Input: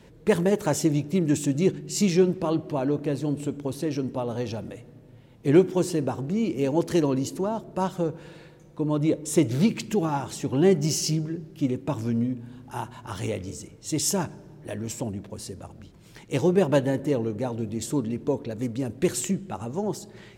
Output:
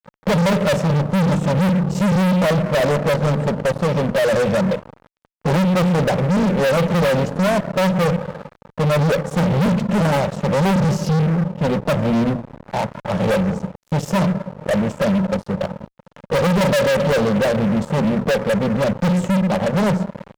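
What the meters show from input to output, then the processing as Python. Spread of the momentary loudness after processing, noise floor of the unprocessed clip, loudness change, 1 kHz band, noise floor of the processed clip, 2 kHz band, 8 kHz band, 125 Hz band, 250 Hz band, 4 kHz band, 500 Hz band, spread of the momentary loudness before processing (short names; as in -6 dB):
7 LU, -51 dBFS, +7.5 dB, +11.0 dB, -65 dBFS, +14.0 dB, -2.5 dB, +10.0 dB, +6.5 dB, +7.5 dB, +7.5 dB, 15 LU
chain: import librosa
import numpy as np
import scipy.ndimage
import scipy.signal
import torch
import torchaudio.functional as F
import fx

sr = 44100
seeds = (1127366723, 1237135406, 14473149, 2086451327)

y = fx.double_bandpass(x, sr, hz=320.0, octaves=1.6)
y = fx.hum_notches(y, sr, base_hz=60, count=5)
y = fx.fuzz(y, sr, gain_db=46.0, gate_db=-55.0)
y = F.gain(torch.from_numpy(y), -1.5).numpy()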